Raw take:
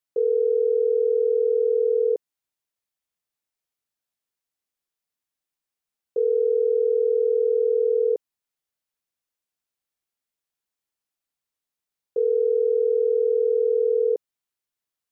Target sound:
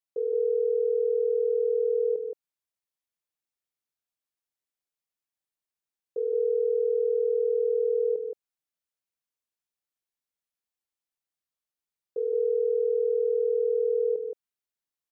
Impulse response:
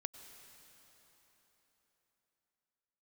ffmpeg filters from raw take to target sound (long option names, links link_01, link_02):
-af "aecho=1:1:171:0.562,volume=-7dB"